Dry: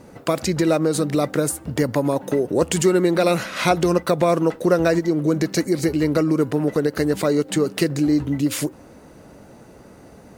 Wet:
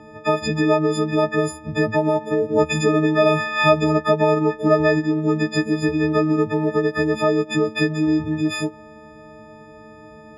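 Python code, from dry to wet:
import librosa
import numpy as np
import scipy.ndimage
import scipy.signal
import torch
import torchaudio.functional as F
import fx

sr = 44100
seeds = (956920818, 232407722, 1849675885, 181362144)

y = fx.freq_snap(x, sr, grid_st=6)
y = scipy.signal.sosfilt(scipy.signal.butter(2, 2300.0, 'lowpass', fs=sr, output='sos'), y)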